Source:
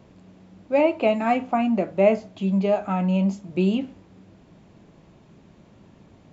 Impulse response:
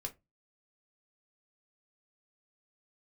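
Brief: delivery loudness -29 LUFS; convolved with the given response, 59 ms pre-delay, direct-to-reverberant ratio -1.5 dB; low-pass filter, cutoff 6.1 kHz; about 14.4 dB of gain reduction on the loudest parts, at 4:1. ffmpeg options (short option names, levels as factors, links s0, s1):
-filter_complex "[0:a]lowpass=6100,acompressor=threshold=0.0316:ratio=4,asplit=2[s0][s1];[1:a]atrim=start_sample=2205,adelay=59[s2];[s1][s2]afir=irnorm=-1:irlink=0,volume=1.41[s3];[s0][s3]amix=inputs=2:normalize=0"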